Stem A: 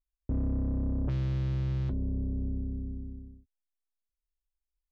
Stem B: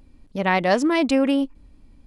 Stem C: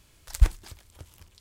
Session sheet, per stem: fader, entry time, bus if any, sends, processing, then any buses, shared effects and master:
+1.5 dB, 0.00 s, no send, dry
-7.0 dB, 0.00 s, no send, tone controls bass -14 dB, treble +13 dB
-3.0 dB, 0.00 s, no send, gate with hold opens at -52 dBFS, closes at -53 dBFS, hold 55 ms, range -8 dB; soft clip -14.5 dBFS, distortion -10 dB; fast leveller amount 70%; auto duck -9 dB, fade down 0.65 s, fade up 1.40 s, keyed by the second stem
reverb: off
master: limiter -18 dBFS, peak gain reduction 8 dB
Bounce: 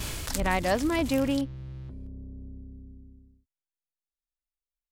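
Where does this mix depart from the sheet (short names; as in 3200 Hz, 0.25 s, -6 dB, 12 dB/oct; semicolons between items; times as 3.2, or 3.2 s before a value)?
stem A +1.5 dB -> -10.0 dB; stem B: missing tone controls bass -14 dB, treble +13 dB; master: missing limiter -18 dBFS, peak gain reduction 8 dB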